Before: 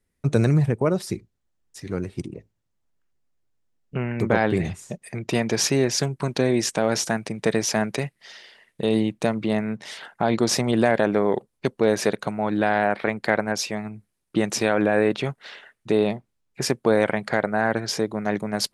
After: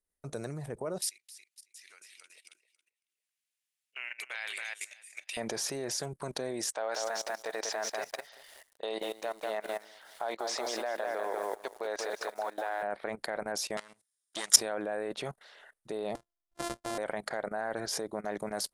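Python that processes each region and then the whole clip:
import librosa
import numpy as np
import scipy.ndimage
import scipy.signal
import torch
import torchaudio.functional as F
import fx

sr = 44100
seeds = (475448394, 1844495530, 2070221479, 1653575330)

y = fx.chain(x, sr, fx.highpass_res(hz=2500.0, q=3.2),
    fx.echo_feedback(ms=275, feedback_pct=21, wet_db=-5.5), at=(1.01, 5.37))
y = fx.chain(y, sr, fx.bandpass_edges(low_hz=630.0, high_hz=7200.0),
    fx.air_absorb(metres=81.0),
    fx.echo_crushed(ms=193, feedback_pct=35, bits=8, wet_db=-4), at=(6.72, 12.83))
y = fx.chain(y, sr, fx.lower_of_two(delay_ms=0.56),
    fx.weighting(curve='ITU-R 468'), at=(13.77, 14.56))
y = fx.chain(y, sr, fx.sample_sort(block=128),
    fx.lowpass(hz=8600.0, slope=12), at=(16.15, 16.98))
y = fx.peak_eq(y, sr, hz=210.0, db=-7.5, octaves=1.5)
y = fx.level_steps(y, sr, step_db=18)
y = fx.graphic_eq_15(y, sr, hz=(100, 630, 2500, 10000), db=(-12, 4, -6, 9))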